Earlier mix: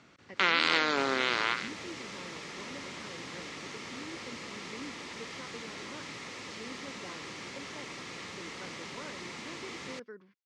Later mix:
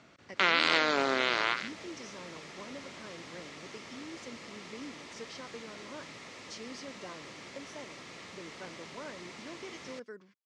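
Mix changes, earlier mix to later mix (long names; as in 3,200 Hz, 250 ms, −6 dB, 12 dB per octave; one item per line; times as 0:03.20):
speech: remove high-frequency loss of the air 190 metres
second sound −5.0 dB
master: add parametric band 640 Hz +6 dB 0.31 octaves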